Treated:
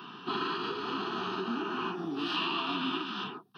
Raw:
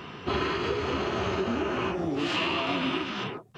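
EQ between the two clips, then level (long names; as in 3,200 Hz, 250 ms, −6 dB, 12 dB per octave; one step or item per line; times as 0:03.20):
high-pass filter 190 Hz 24 dB per octave
phaser with its sweep stopped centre 2,100 Hz, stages 6
−1.0 dB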